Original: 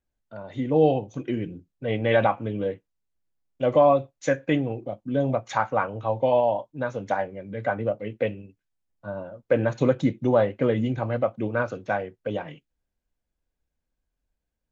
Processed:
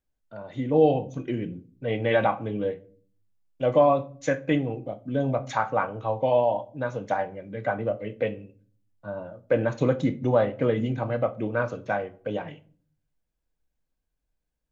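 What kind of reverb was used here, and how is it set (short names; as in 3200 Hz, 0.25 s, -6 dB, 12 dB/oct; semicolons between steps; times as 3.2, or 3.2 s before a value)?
shoebox room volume 400 m³, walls furnished, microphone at 0.52 m; gain -1.5 dB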